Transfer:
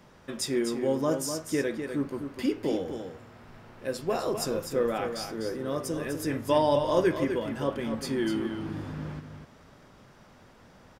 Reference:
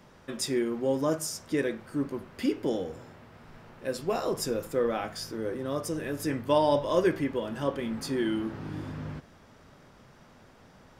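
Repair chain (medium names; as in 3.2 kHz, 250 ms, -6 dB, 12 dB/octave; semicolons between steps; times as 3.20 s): inverse comb 250 ms -7.5 dB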